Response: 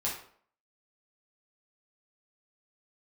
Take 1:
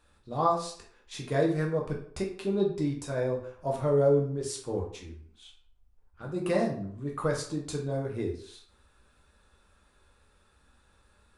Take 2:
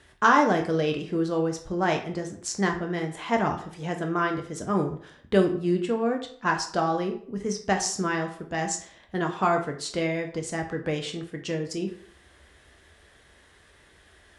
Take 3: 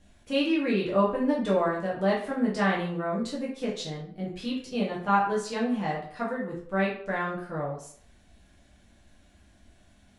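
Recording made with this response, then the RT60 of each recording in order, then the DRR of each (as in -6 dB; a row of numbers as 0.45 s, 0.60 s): 3; 0.55 s, 0.55 s, 0.55 s; -1.5 dB, 3.0 dB, -5.5 dB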